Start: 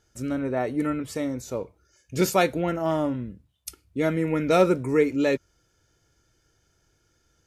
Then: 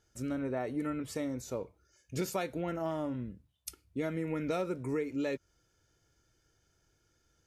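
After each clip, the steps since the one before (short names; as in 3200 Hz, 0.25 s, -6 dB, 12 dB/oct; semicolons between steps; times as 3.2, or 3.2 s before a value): compressor 6:1, threshold -25 dBFS, peak gain reduction 11.5 dB; gain -5.5 dB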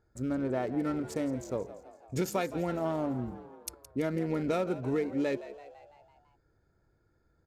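Wiener smoothing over 15 samples; frequency-shifting echo 0.167 s, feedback 57%, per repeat +73 Hz, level -15 dB; gain +3.5 dB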